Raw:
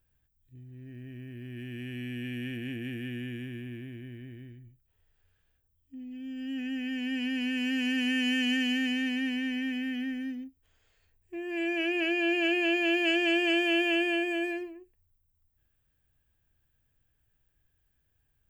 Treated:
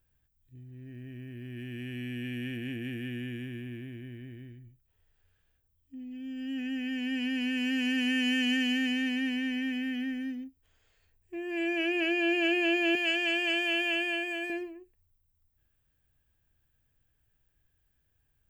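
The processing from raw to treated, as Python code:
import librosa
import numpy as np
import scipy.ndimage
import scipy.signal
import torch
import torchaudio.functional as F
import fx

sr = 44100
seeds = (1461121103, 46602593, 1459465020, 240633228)

y = fx.highpass(x, sr, hz=760.0, slope=6, at=(12.95, 14.5))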